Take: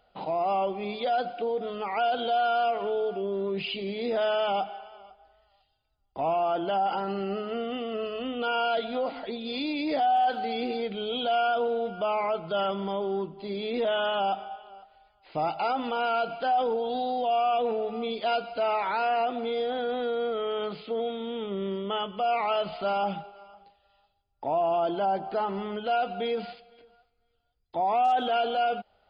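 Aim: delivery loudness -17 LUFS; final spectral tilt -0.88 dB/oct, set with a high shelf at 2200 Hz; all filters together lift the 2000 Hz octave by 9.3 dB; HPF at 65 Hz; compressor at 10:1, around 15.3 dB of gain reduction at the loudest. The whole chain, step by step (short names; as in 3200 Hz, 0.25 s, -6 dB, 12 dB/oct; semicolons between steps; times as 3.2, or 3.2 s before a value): HPF 65 Hz; bell 2000 Hz +9 dB; high shelf 2200 Hz +8.5 dB; compressor 10:1, threshold -35 dBFS; gain +21 dB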